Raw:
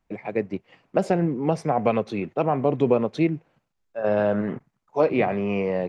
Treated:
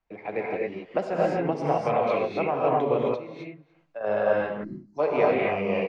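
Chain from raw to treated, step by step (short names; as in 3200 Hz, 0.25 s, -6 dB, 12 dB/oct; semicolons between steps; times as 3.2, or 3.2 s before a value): recorder AGC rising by 8.8 dB/s; low shelf 160 Hz +9.5 dB; non-linear reverb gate 0.29 s rising, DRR -4.5 dB; 3.14–4.01 compressor 6:1, threshold -26 dBFS, peak gain reduction 15 dB; three-band isolator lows -13 dB, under 400 Hz, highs -20 dB, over 5900 Hz; echo 0.294 s -23.5 dB; 4.64–4.99 spectral gain 380–4000 Hz -28 dB; noise-modulated level, depth 60%; gain -2.5 dB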